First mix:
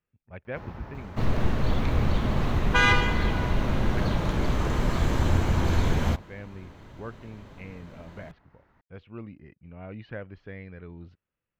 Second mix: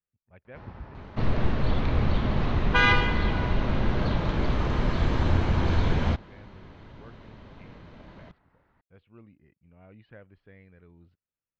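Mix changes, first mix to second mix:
speech -11.5 dB; first sound -3.5 dB; master: add low-pass 5 kHz 24 dB/octave

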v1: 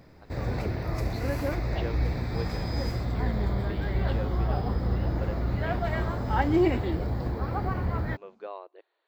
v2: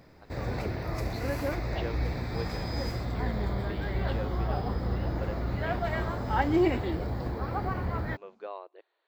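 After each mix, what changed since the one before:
master: add bass shelf 270 Hz -4 dB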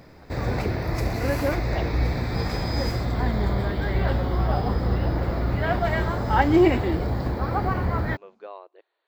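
first sound +7.0 dB

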